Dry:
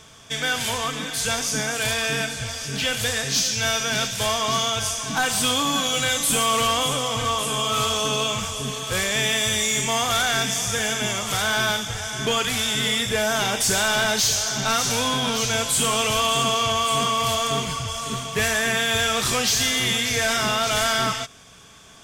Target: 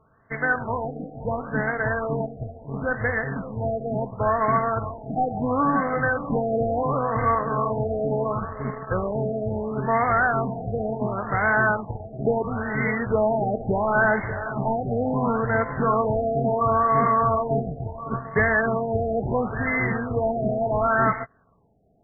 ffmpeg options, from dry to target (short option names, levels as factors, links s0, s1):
-af "aeval=exprs='0.2*(cos(1*acos(clip(val(0)/0.2,-1,1)))-cos(1*PI/2))+0.0224*(cos(7*acos(clip(val(0)/0.2,-1,1)))-cos(7*PI/2))':c=same,afftfilt=real='re*lt(b*sr/1024,780*pow(2200/780,0.5+0.5*sin(2*PI*0.72*pts/sr)))':imag='im*lt(b*sr/1024,780*pow(2200/780,0.5+0.5*sin(2*PI*0.72*pts/sr)))':win_size=1024:overlap=0.75,volume=1.5"